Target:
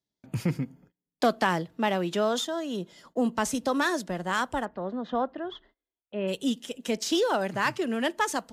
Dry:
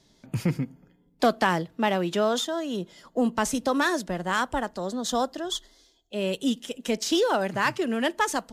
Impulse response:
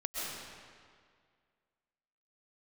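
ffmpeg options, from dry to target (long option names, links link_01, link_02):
-filter_complex "[0:a]asplit=3[link_01][link_02][link_03];[link_01]afade=type=out:start_time=4.64:duration=0.02[link_04];[link_02]lowpass=frequency=2500:width=0.5412,lowpass=frequency=2500:width=1.3066,afade=type=in:start_time=4.64:duration=0.02,afade=type=out:start_time=6.27:duration=0.02[link_05];[link_03]afade=type=in:start_time=6.27:duration=0.02[link_06];[link_04][link_05][link_06]amix=inputs=3:normalize=0,agate=range=-26dB:threshold=-53dB:ratio=16:detection=peak,highpass=46,volume=-2dB"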